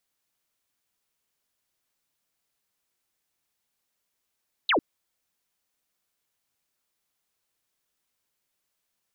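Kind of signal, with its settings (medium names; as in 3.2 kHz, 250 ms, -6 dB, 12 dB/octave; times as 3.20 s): laser zap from 4.2 kHz, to 240 Hz, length 0.10 s sine, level -19 dB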